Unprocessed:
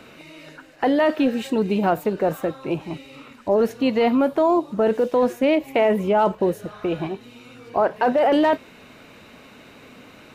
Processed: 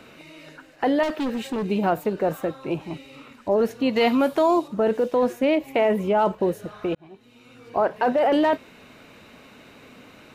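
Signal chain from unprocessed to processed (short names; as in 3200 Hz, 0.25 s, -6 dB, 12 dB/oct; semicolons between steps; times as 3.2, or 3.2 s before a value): 1.03–1.65 overloaded stage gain 21 dB; 3.96–4.68 high shelf 2000 Hz +10.5 dB; 6.95–7.78 fade in; gain -2 dB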